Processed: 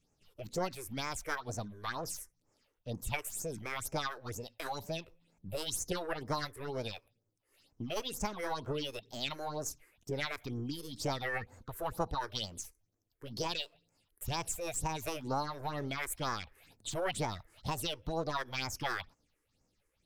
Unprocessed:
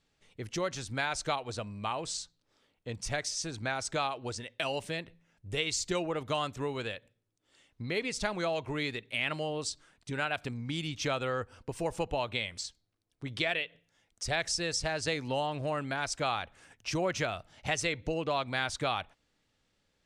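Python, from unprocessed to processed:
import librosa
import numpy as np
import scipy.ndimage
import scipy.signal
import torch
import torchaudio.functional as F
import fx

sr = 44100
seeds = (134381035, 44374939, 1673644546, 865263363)

y = np.where(x < 0.0, 10.0 ** (-3.0 / 20.0) * x, x)
y = fx.phaser_stages(y, sr, stages=6, low_hz=170.0, high_hz=2600.0, hz=2.1, feedback_pct=45)
y = fx.formant_shift(y, sr, semitones=6)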